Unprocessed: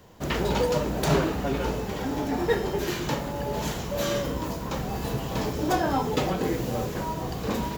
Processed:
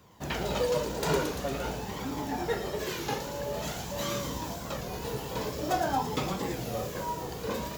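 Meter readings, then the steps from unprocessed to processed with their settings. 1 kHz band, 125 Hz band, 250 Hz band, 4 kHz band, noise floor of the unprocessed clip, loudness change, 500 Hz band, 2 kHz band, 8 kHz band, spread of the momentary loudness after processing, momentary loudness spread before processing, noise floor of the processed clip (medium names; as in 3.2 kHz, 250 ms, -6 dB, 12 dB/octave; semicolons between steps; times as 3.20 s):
-3.0 dB, -7.0 dB, -7.5 dB, -2.5 dB, -34 dBFS, -5.0 dB, -4.5 dB, -4.0 dB, -1.5 dB, 7 LU, 6 LU, -39 dBFS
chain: high-pass 110 Hz 6 dB/octave; flange 0.48 Hz, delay 0.8 ms, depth 1.5 ms, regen +41%; on a send: feedback echo behind a high-pass 113 ms, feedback 72%, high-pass 4.5 kHz, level -3 dB; on the sum: warped record 33 1/3 rpm, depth 100 cents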